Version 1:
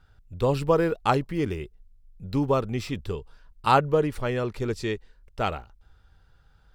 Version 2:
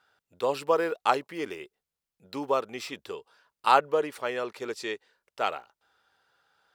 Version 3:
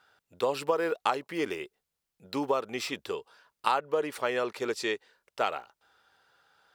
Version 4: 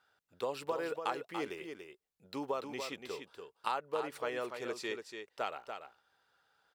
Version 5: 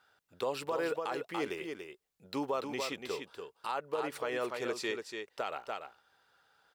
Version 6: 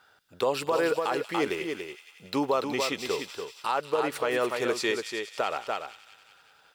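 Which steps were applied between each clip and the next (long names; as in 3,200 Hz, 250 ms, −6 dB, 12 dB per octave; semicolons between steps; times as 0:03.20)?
high-pass filter 490 Hz 12 dB per octave
downward compressor 5 to 1, threshold −27 dBFS, peak gain reduction 12.5 dB; level +3.5 dB
single-tap delay 288 ms −7 dB; level −8.5 dB
brickwall limiter −28 dBFS, peak gain reduction 11.5 dB; level +4.5 dB
delay with a high-pass on its return 186 ms, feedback 63%, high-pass 3,000 Hz, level −8 dB; level +8 dB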